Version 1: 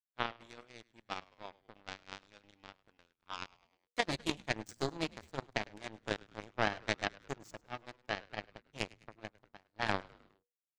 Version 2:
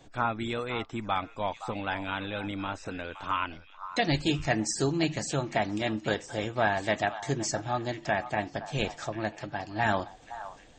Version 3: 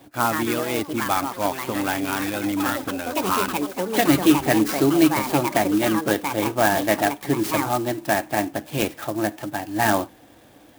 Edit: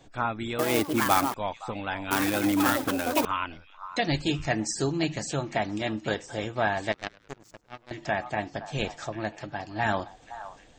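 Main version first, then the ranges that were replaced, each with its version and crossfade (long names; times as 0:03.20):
2
0:00.59–0:01.34: punch in from 3
0:02.11–0:03.25: punch in from 3
0:06.92–0:07.91: punch in from 1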